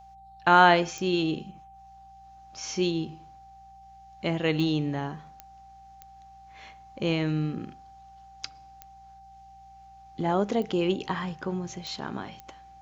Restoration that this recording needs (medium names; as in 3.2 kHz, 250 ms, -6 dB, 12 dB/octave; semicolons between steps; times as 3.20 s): de-click; de-hum 60 Hz, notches 3; band-stop 780 Hz, Q 30